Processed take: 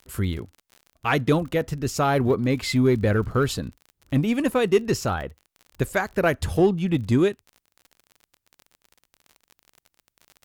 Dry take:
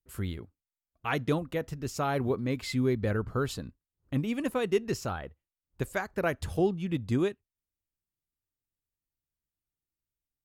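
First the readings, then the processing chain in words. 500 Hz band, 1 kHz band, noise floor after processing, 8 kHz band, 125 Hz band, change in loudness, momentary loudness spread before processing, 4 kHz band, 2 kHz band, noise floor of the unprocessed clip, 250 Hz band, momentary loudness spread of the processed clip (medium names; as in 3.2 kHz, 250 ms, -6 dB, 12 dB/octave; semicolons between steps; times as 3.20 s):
+8.0 dB, +8.0 dB, -83 dBFS, +9.0 dB, +8.0 dB, +8.0 dB, 9 LU, +8.5 dB, +8.0 dB, under -85 dBFS, +8.0 dB, 10 LU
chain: in parallel at -10 dB: hard clipper -28.5 dBFS, distortion -8 dB; on the sum: crackle 39 per s -42 dBFS; trim +6.5 dB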